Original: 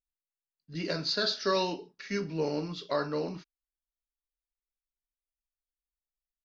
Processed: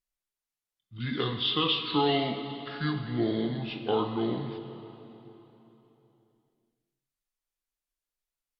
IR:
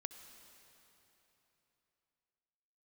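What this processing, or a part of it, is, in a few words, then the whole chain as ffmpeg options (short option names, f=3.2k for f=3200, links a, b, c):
slowed and reverbed: -filter_complex "[0:a]asetrate=33075,aresample=44100[a];[1:a]atrim=start_sample=2205[b];[a][b]afir=irnorm=-1:irlink=0,volume=6dB"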